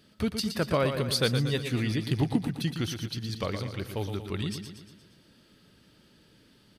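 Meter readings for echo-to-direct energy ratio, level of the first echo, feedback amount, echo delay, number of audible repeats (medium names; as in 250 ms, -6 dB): -6.5 dB, -8.0 dB, 53%, 117 ms, 5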